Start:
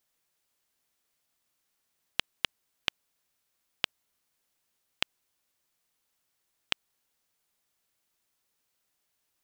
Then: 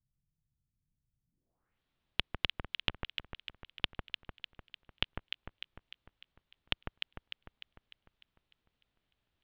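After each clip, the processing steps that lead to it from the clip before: RIAA curve playback; echo with dull and thin repeats by turns 0.15 s, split 1600 Hz, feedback 71%, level -3 dB; low-pass sweep 140 Hz -> 3500 Hz, 1.26–1.8; gain -4 dB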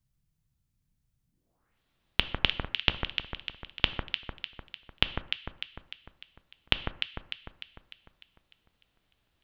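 non-linear reverb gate 0.2 s falling, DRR 12 dB; gain +7.5 dB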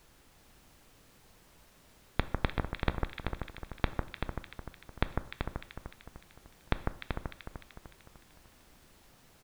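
running mean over 15 samples; added noise pink -63 dBFS; echo 0.384 s -6 dB; gain +1.5 dB

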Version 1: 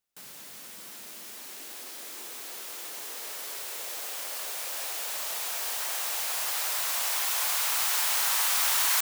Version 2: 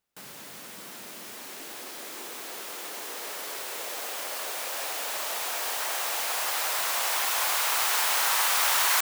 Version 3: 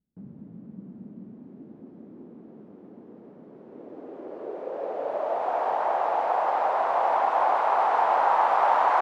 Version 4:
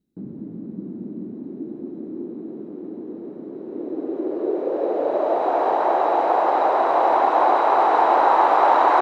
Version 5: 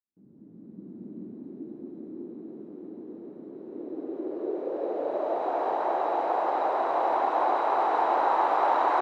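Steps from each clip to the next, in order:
high shelf 2700 Hz -7.5 dB; gain +7 dB
low-pass sweep 210 Hz -> 790 Hz, 3.49–5.6; gain +7 dB
small resonant body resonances 330/3900 Hz, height 14 dB, ringing for 25 ms; gain +4 dB
opening faded in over 1.20 s; gain -8 dB

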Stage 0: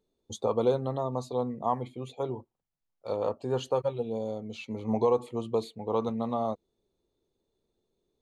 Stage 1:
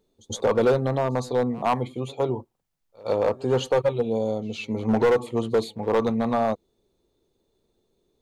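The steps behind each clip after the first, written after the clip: overloaded stage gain 23 dB; pre-echo 0.112 s -23 dB; gain +8 dB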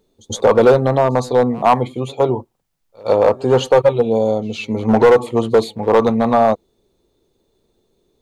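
dynamic EQ 780 Hz, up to +4 dB, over -31 dBFS, Q 0.81; gain +7 dB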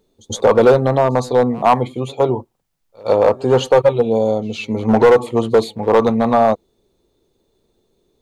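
nothing audible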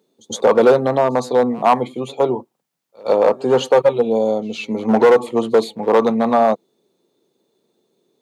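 HPF 160 Hz 24 dB/oct; gain -1 dB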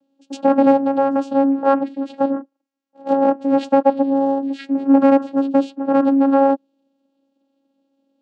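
vocoder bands 8, saw 274 Hz

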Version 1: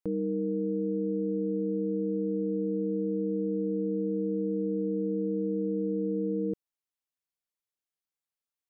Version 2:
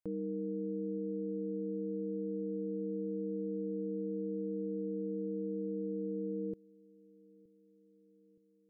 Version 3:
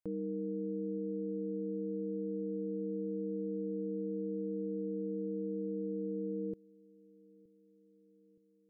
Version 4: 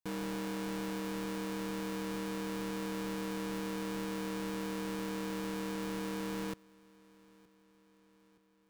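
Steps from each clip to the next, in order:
dark delay 0.92 s, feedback 59%, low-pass 440 Hz, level -22 dB; gain -7.5 dB
nothing audible
half-waves squared off; gain -4 dB

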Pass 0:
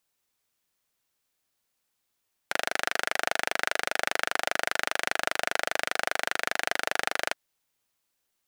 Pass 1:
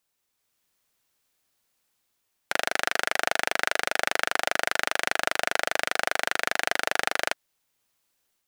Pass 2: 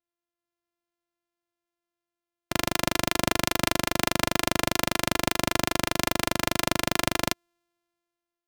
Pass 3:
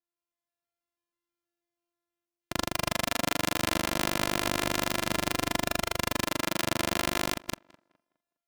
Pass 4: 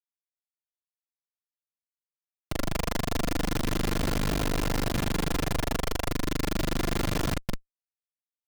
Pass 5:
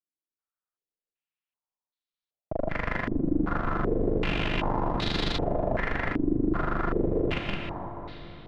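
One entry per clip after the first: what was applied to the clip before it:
AGC gain up to 4.5 dB
sample sorter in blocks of 128 samples; three-band expander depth 40%; gain +1 dB
reverse delay 0.161 s, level -2 dB; tape echo 0.206 s, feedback 31%, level -21.5 dB, low-pass 2400 Hz; gain -5.5 dB
Schmitt trigger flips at -35 dBFS; gain +6.5 dB
digital reverb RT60 4.2 s, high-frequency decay 0.65×, pre-delay 95 ms, DRR 2.5 dB; stepped low-pass 2.6 Hz 320–3900 Hz; gain -3 dB

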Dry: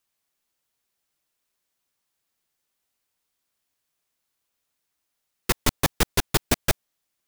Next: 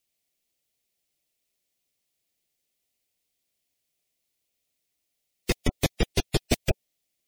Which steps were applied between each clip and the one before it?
spectral gate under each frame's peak -20 dB strong; band shelf 1200 Hz -11.5 dB 1.2 oct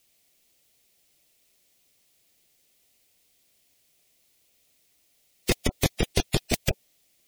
negative-ratio compressor -25 dBFS, ratio -0.5; gain +6.5 dB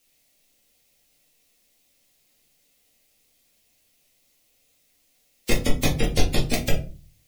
shoebox room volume 180 m³, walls furnished, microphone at 2.2 m; gain -2.5 dB

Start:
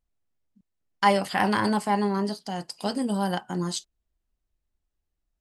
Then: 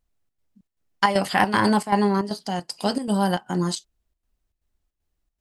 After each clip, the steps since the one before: chopper 2.6 Hz, depth 65%, duty 75%; gain +5 dB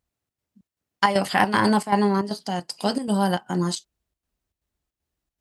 HPF 66 Hz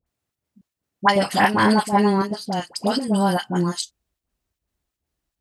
dispersion highs, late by 65 ms, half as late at 1100 Hz; gain +2.5 dB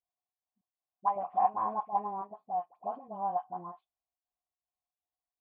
vocal tract filter a; gain -2.5 dB

